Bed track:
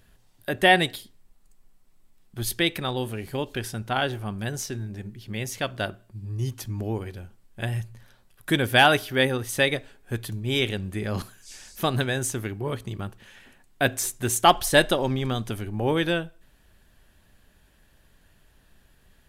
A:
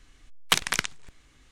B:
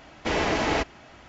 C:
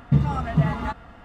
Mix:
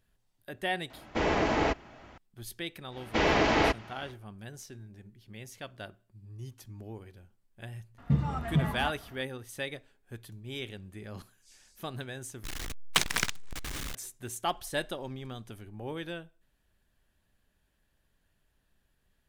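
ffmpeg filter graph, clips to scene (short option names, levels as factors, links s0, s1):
-filter_complex "[2:a]asplit=2[s0][s1];[0:a]volume=0.188[s2];[s0]highshelf=f=2600:g=-8[s3];[s1]lowpass=5500[s4];[1:a]aeval=exprs='val(0)+0.5*0.0473*sgn(val(0))':c=same[s5];[s2]asplit=2[s6][s7];[s6]atrim=end=12.444[s8];[s5]atrim=end=1.51,asetpts=PTS-STARTPTS,volume=0.596[s9];[s7]atrim=start=13.946[s10];[s3]atrim=end=1.28,asetpts=PTS-STARTPTS,volume=0.841,afade=t=in:d=0.004:c=hsin,afade=t=out:st=1.276:d=0.004:c=hsin,adelay=900[s11];[s4]atrim=end=1.28,asetpts=PTS-STARTPTS,afade=t=in:d=0.1,afade=t=out:st=1.18:d=0.1,adelay=2890[s12];[3:a]atrim=end=1.24,asetpts=PTS-STARTPTS,volume=0.422,afade=t=in:d=0.004:c=hsin,afade=t=out:st=1.236:d=0.004:c=hsin,adelay=7980[s13];[s8][s9]acrossfade=d=0.004:c1=hsin:c2=hsin[s14];[s14][s10]acrossfade=d=0.004:c1=hsin:c2=hsin[s15];[s15][s11][s12][s13]amix=inputs=4:normalize=0"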